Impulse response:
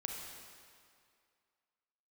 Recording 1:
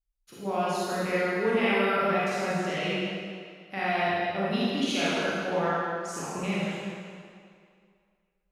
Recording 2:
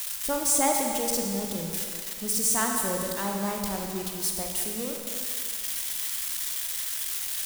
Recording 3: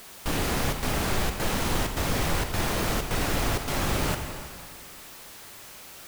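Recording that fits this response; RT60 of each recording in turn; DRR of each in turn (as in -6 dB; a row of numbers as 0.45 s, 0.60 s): 2; 2.2 s, 2.2 s, 2.2 s; -9.5 dB, 0.5 dB, 5.5 dB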